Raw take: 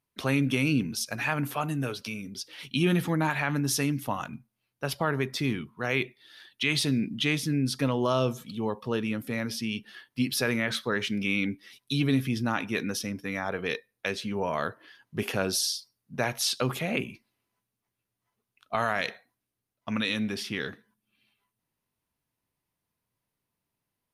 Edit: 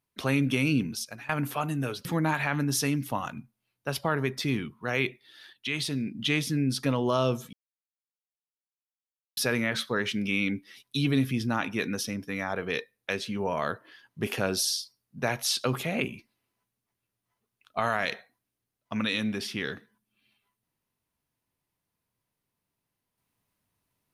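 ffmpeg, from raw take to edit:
-filter_complex "[0:a]asplit=7[a][b][c][d][e][f][g];[a]atrim=end=1.29,asetpts=PTS-STARTPTS,afade=t=out:st=0.86:d=0.43:silence=0.0841395[h];[b]atrim=start=1.29:end=2.052,asetpts=PTS-STARTPTS,afade=t=in:d=0.004:c=hsin:silence=0.0841395[i];[c]atrim=start=3.008:end=6.492[j];[d]atrim=start=6.488:end=7.152,asetpts=PTS-STARTPTS,volume=-4.5dB[k];[e]atrim=start=7.148:end=8.49,asetpts=PTS-STARTPTS,afade=t=out:st=1.338:d=0.004:c=hsin[l];[f]atrim=start=8.49:end=10.33,asetpts=PTS-STARTPTS,volume=0[m];[g]atrim=start=10.33,asetpts=PTS-STARTPTS,afade=t=in:d=0.004:c=hsin[n];[h][i]concat=n=2:v=0:a=1[o];[o][j]acrossfade=d=0.004:c1=hsin:c2=hsin[p];[p][k]acrossfade=d=0.004:c1=hsin:c2=hsin[q];[l][m][n]concat=n=3:v=0:a=1[r];[q][r]acrossfade=d=0.004:c1=hsin:c2=hsin"

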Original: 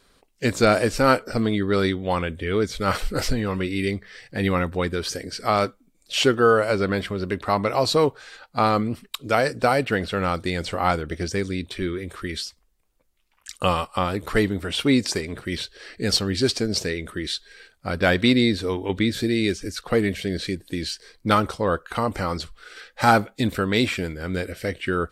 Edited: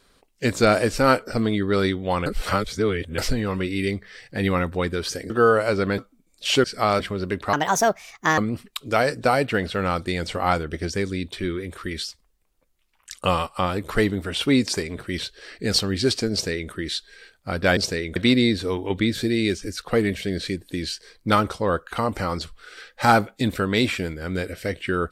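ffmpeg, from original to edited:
-filter_complex "[0:a]asplit=11[a][b][c][d][e][f][g][h][i][j][k];[a]atrim=end=2.262[l];[b]atrim=start=2.258:end=3.182,asetpts=PTS-STARTPTS,areverse[m];[c]atrim=start=3.178:end=5.302[n];[d]atrim=start=6.318:end=7.002[o];[e]atrim=start=5.658:end=6.322[p];[f]atrim=start=5.298:end=5.662[q];[g]atrim=start=6.998:end=7.534[r];[h]atrim=start=7.53:end=8.76,asetpts=PTS-STARTPTS,asetrate=63945,aresample=44100[s];[i]atrim=start=8.756:end=18.152[t];[j]atrim=start=16.698:end=17.092[u];[k]atrim=start=18.148[v];[l][m]acrossfade=d=0.004:c1=hsin:c2=hsin[w];[w][n]acrossfade=d=0.004:c1=hsin:c2=hsin[x];[x][o]acrossfade=d=0.004:c1=hsin:c2=hsin[y];[y][p]acrossfade=d=0.004:c1=hsin:c2=hsin[z];[z][q]acrossfade=d=0.004:c1=hsin:c2=hsin[aa];[aa][r]acrossfade=d=0.004:c1=hsin:c2=hsin[ab];[ab][s]acrossfade=d=0.004:c1=hsin:c2=hsin[ac];[ac][t]acrossfade=d=0.004:c1=hsin:c2=hsin[ad];[ad][u]acrossfade=d=0.004:c1=hsin:c2=hsin[ae];[ae][v]acrossfade=d=0.004:c1=hsin:c2=hsin"

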